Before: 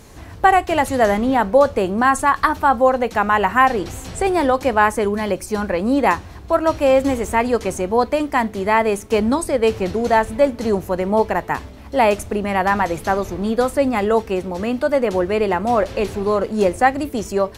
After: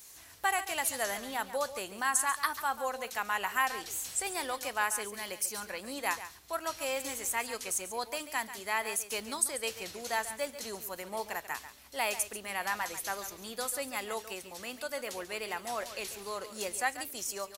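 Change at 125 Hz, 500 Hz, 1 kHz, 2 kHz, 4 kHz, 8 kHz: -28.5, -21.5, -17.5, -11.5, -6.0, +1.0 dB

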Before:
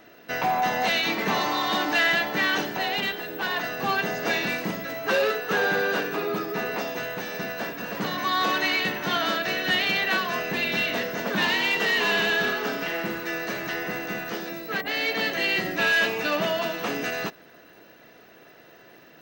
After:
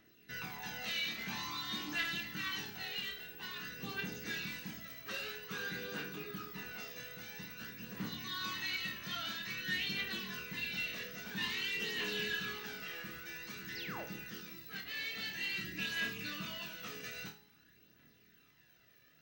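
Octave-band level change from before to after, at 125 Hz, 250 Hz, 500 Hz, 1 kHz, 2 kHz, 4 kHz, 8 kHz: -11.0, -15.5, -22.5, -22.0, -15.5, -11.5, -10.0 dB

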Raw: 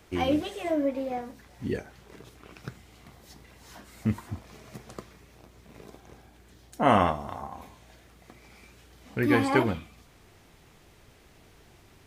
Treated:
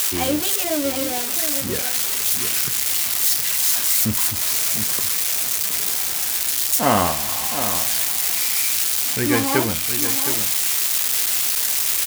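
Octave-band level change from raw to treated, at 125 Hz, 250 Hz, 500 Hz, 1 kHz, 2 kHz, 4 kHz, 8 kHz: +3.5, +3.5, +3.5, +4.5, +9.5, +21.0, +35.5 dB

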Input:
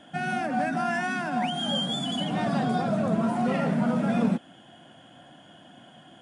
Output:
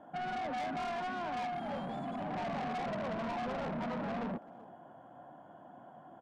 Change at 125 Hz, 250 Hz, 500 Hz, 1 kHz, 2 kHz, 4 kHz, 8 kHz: -14.5 dB, -14.5 dB, -8.5 dB, -7.0 dB, -11.5 dB, -19.0 dB, under -15 dB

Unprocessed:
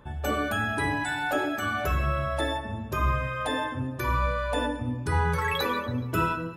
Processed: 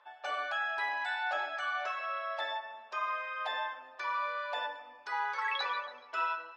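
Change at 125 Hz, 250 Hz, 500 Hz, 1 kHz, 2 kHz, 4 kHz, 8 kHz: under -40 dB, under -35 dB, -12.0 dB, -4.5 dB, -4.5 dB, -5.0 dB, under -15 dB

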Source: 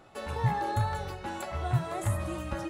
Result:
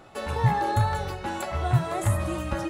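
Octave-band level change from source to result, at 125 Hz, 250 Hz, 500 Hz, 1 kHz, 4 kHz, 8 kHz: +5.5, +5.5, +5.5, +5.5, +5.5, +5.5 dB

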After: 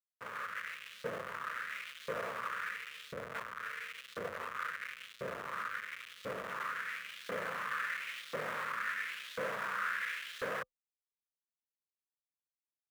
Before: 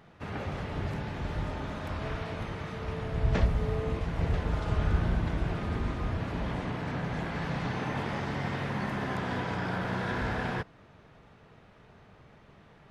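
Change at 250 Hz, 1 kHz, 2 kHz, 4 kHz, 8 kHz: -20.5 dB, -4.0 dB, +0.5 dB, -2.5 dB, n/a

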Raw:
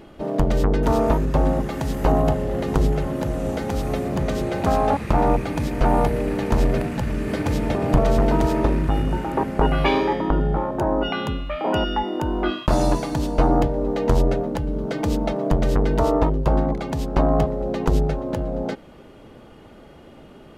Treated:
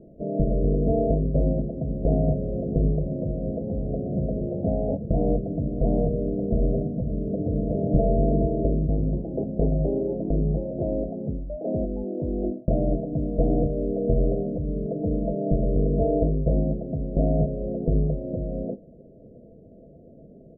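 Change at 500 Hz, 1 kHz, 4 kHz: -3.5 dB, -15.0 dB, under -40 dB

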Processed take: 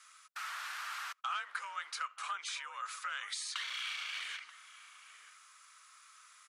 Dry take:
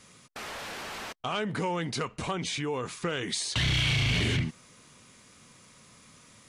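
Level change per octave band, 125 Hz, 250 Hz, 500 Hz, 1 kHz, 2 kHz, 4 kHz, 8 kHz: under -40 dB, under -40 dB, -30.5 dB, -4.5 dB, -7.0 dB, -10.0 dB, -7.5 dB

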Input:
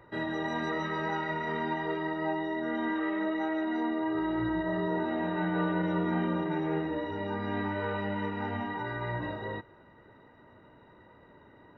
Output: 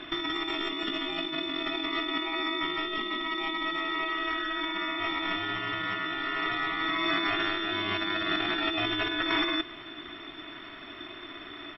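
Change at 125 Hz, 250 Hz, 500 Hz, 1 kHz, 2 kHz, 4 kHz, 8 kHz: -11.0 dB, -3.5 dB, -4.0 dB, +1.5 dB, +6.5 dB, +18.0 dB, n/a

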